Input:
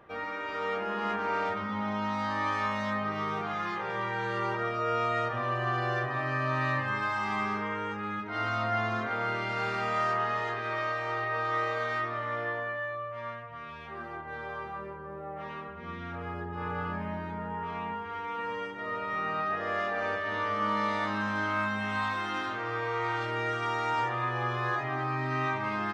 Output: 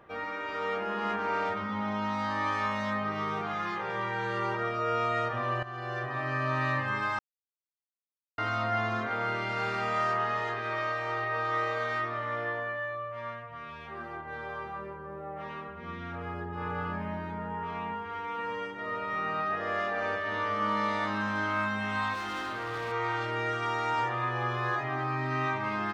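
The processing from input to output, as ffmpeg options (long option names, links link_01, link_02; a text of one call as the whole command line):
ffmpeg -i in.wav -filter_complex "[0:a]asettb=1/sr,asplit=3[link_01][link_02][link_03];[link_01]atrim=end=22.144[link_04];[link_02]atrim=start=22.14:end=22.92,asetpts=PTS-STARTPTS,afade=type=in:duration=0.004:curve=qsin,afade=type=out:start_time=0.776:duration=0.004:curve=qsin,asoftclip=type=hard:threshold=-31.5dB[link_05];[link_03]atrim=start=22.916[link_06];[link_04][link_05]acrossfade=duration=0.004:curve1=hsin:curve2=qsin[link_07];[link_07][link_06]acrossfade=duration=0.004:curve1=qsin:curve2=hsin,asplit=4[link_08][link_09][link_10][link_11];[link_08]atrim=end=5.63,asetpts=PTS-STARTPTS,afade=type=out:start_time=5.626:duration=0.004:curve=hsin:silence=0.188365[link_12];[link_09]atrim=start=5.63:end=7.19,asetpts=PTS-STARTPTS,afade=type=in:duration=0.94:curve=qsin:silence=0.188365,afade=type=out:start_time=1.556:duration=0.004:curve=hsin[link_13];[link_10]atrim=start=7.19:end=8.38,asetpts=PTS-STARTPTS,volume=0[link_14];[link_11]atrim=start=8.38,asetpts=PTS-STARTPTS,afade=type=in:duration=0.004:curve=hsin[link_15];[link_12][link_13][link_14][link_15]concat=n=4:v=0:a=1" out.wav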